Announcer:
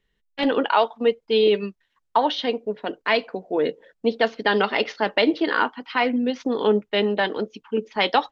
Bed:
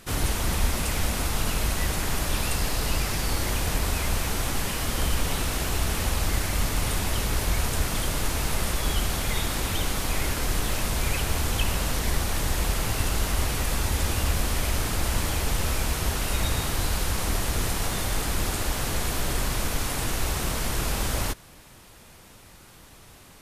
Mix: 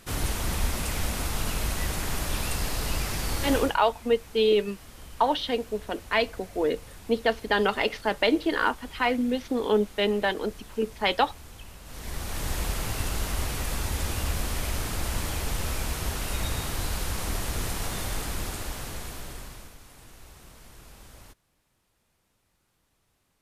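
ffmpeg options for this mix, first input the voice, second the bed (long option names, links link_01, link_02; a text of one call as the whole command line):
ffmpeg -i stem1.wav -i stem2.wav -filter_complex "[0:a]adelay=3050,volume=-3.5dB[link_01];[1:a]volume=13dB,afade=type=out:start_time=3.55:duration=0.21:silence=0.141254,afade=type=in:start_time=11.84:duration=0.67:silence=0.158489,afade=type=out:start_time=18.07:duration=1.7:silence=0.11885[link_02];[link_01][link_02]amix=inputs=2:normalize=0" out.wav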